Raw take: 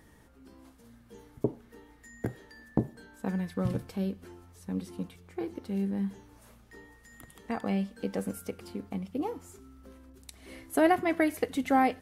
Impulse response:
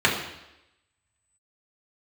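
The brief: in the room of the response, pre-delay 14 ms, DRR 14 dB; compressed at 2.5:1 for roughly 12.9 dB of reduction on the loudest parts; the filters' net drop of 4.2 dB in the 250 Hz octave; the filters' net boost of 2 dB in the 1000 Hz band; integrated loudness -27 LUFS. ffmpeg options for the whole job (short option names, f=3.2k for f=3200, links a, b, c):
-filter_complex "[0:a]equalizer=f=250:t=o:g=-6,equalizer=f=1k:t=o:g=3.5,acompressor=threshold=-39dB:ratio=2.5,asplit=2[a][b];[1:a]atrim=start_sample=2205,adelay=14[c];[b][c]afir=irnorm=-1:irlink=0,volume=-32.5dB[d];[a][d]amix=inputs=2:normalize=0,volume=15.5dB"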